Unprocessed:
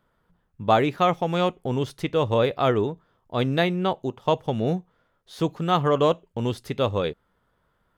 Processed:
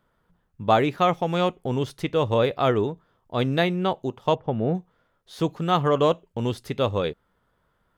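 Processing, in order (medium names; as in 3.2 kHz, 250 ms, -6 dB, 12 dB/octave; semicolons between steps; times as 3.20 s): 4.35–4.75 s: low-pass 1.7 kHz 12 dB/octave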